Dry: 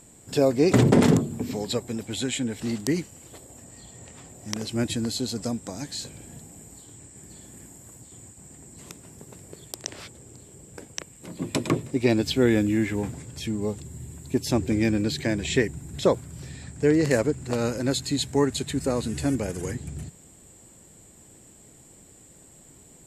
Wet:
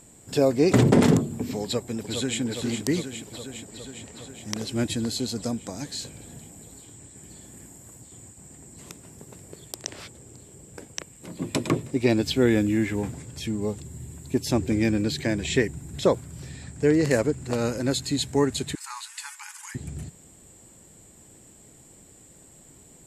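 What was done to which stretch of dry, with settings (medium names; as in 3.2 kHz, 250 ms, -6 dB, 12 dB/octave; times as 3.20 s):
1.63–2.40 s: echo throw 410 ms, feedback 75%, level -6.5 dB
18.75–19.75 s: brick-wall FIR high-pass 820 Hz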